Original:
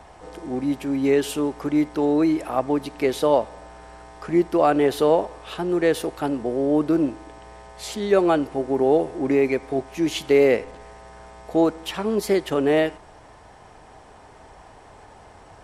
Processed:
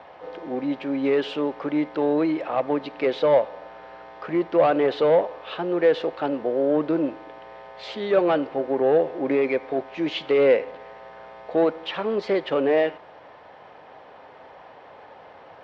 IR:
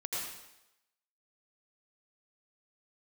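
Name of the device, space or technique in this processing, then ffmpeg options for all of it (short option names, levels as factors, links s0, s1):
overdrive pedal into a guitar cabinet: -filter_complex "[0:a]asplit=2[s0][s1];[s1]highpass=f=720:p=1,volume=5.62,asoftclip=type=tanh:threshold=0.501[s2];[s0][s2]amix=inputs=2:normalize=0,lowpass=f=5700:p=1,volume=0.501,highpass=77,equalizer=f=160:t=q:w=4:g=5,equalizer=f=270:t=q:w=4:g=3,equalizer=f=530:t=q:w=4:g=9,lowpass=f=3900:w=0.5412,lowpass=f=3900:w=1.3066,volume=0.422"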